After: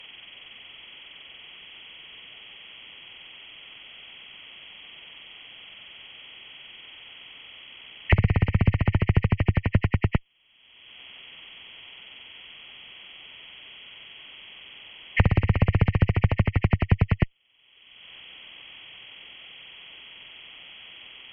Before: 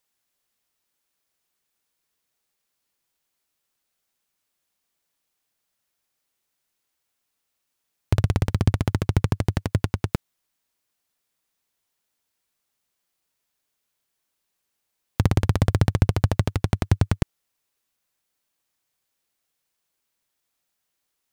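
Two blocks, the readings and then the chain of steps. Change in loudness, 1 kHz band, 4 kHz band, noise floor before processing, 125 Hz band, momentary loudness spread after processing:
0.0 dB, −0.5 dB, +6.0 dB, −79 dBFS, 0.0 dB, 20 LU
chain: hearing-aid frequency compression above 1,800 Hz 4 to 1
harmonic generator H 4 −19 dB, 8 −37 dB, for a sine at −4 dBFS
multiband upward and downward compressor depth 100%

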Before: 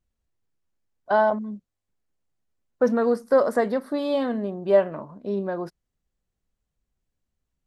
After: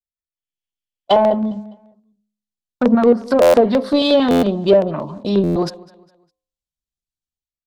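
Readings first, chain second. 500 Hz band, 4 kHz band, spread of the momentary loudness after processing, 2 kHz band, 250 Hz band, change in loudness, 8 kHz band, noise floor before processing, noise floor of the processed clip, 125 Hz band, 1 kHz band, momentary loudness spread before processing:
+7.5 dB, +18.5 dB, 11 LU, +2.5 dB, +11.0 dB, +8.0 dB, can't be measured, −83 dBFS, below −85 dBFS, +13.0 dB, +6.5 dB, 13 LU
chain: gain on a spectral selection 0:00.37–0:01.20, 1,600–3,500 Hz +10 dB
treble cut that deepens with the level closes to 620 Hz, closed at −15.5 dBFS
noise gate −43 dBFS, range −30 dB
auto-filter notch square 5.6 Hz 460–1,600 Hz
high shelf with overshoot 2,500 Hz +10 dB, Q 1.5
automatic gain control gain up to 11.5 dB
in parallel at −7 dB: soft clipping −17 dBFS, distortion −8 dB
on the sum: hum removal 105 Hz, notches 10
on a send: repeating echo 203 ms, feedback 38%, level −23 dB
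on the sum: buffer that repeats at 0:03.41/0:04.30/0:05.43, samples 512, times 10

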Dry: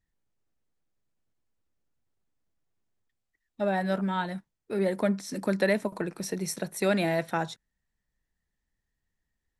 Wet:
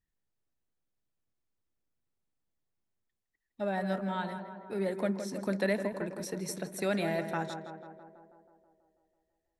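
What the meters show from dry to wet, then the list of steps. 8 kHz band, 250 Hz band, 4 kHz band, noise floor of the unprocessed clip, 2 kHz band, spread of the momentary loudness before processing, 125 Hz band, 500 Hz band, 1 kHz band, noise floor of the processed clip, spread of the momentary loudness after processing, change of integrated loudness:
−5.5 dB, −4.5 dB, −5.5 dB, −84 dBFS, −5.0 dB, 9 LU, −4.5 dB, −4.5 dB, −4.5 dB, −85 dBFS, 12 LU, −5.0 dB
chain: tape delay 163 ms, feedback 72%, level −7 dB, low-pass 1,800 Hz
level −5.5 dB

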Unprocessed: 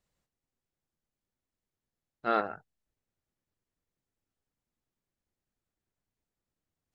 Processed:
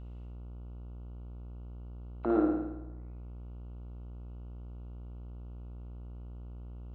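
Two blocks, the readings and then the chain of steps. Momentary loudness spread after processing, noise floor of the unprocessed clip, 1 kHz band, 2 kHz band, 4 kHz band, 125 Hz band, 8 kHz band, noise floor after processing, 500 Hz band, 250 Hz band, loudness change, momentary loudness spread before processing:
16 LU, below −85 dBFS, −8.0 dB, −13.5 dB, below −15 dB, +20.5 dB, can't be measured, −45 dBFS, +1.5 dB, +12.5 dB, −7.5 dB, 14 LU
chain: in parallel at +2 dB: downward compressor, threshold −37 dBFS, peak gain reduction 14 dB
on the sum: envelope filter 300–2,900 Hz, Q 8.7, down, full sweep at −36.5 dBFS
flutter between parallel walls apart 9.4 metres, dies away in 0.95 s
hum with harmonics 60 Hz, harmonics 24, −58 dBFS −9 dB per octave
level +14 dB

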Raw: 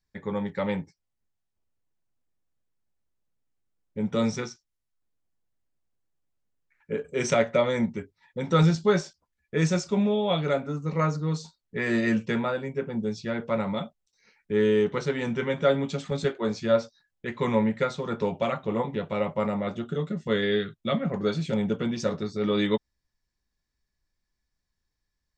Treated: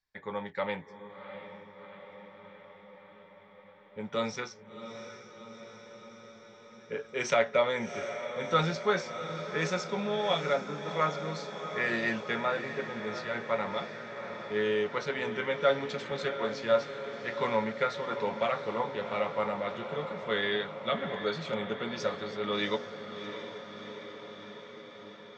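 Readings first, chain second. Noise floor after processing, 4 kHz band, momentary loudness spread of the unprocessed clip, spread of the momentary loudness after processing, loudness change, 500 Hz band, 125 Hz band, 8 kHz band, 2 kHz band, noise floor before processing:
−54 dBFS, −0.5 dB, 10 LU, 19 LU, −5.0 dB, −4.0 dB, −12.0 dB, −6.0 dB, +0.5 dB, −82 dBFS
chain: three-way crossover with the lows and the highs turned down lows −13 dB, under 520 Hz, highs −20 dB, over 5,700 Hz
feedback delay with all-pass diffusion 713 ms, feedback 71%, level −10 dB

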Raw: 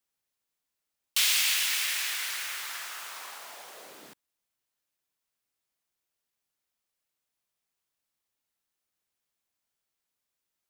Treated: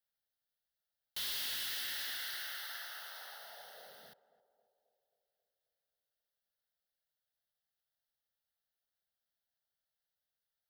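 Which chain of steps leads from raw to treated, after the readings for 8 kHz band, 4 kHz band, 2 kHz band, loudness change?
−16.5 dB, −10.5 dB, −12.0 dB, −12.5 dB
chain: phaser with its sweep stopped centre 1,600 Hz, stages 8
gain into a clipping stage and back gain 33 dB
feedback echo with a band-pass in the loop 268 ms, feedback 63%, band-pass 500 Hz, level −15 dB
level −4 dB

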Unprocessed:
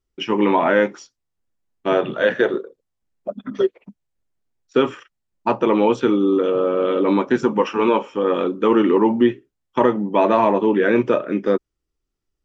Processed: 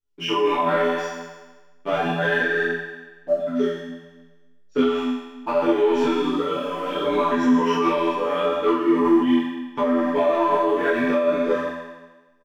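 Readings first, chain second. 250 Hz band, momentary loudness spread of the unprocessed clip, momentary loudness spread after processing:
−2.0 dB, 8 LU, 12 LU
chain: comb filter 6.9 ms, depth 88%
leveller curve on the samples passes 1
tuned comb filter 84 Hz, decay 1.2 s, harmonics all, mix 100%
on a send: single-tap delay 144 ms −12 dB
on the sum: boost into a limiter +23.5 dB
micro pitch shift up and down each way 23 cents
level −8 dB

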